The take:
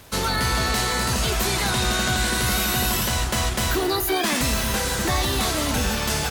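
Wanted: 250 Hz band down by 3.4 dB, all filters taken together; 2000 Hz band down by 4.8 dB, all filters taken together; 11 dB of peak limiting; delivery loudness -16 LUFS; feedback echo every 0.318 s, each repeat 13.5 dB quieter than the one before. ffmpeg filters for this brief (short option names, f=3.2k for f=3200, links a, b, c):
-af "equalizer=f=250:t=o:g=-4.5,equalizer=f=2k:t=o:g=-6.5,alimiter=limit=-23dB:level=0:latency=1,aecho=1:1:318|636:0.211|0.0444,volume=14.5dB"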